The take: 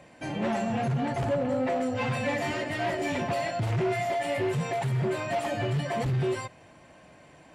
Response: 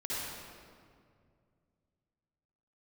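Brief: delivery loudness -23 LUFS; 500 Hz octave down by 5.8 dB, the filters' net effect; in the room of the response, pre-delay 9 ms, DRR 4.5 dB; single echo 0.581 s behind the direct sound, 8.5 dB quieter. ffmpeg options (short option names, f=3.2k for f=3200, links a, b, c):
-filter_complex "[0:a]equalizer=f=500:t=o:g=-8.5,aecho=1:1:581:0.376,asplit=2[a][b];[1:a]atrim=start_sample=2205,adelay=9[c];[b][c]afir=irnorm=-1:irlink=0,volume=-9dB[d];[a][d]amix=inputs=2:normalize=0,volume=6dB"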